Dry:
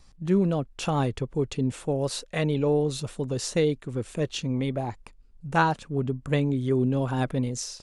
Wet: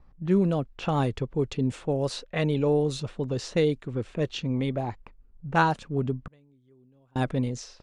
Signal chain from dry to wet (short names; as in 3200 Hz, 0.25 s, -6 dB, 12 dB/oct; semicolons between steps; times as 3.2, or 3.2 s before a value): low-pass opened by the level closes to 1300 Hz, open at -20 dBFS; 6.27–7.16 flipped gate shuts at -30 dBFS, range -35 dB